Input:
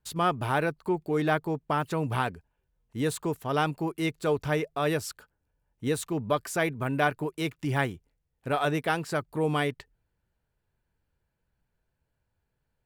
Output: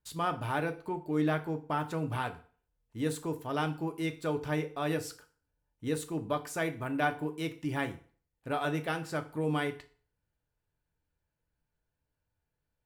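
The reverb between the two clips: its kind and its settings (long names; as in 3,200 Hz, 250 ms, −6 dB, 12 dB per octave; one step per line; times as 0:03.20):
feedback delay network reverb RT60 0.43 s, low-frequency decay 0.95×, high-frequency decay 0.9×, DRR 6.5 dB
level −6.5 dB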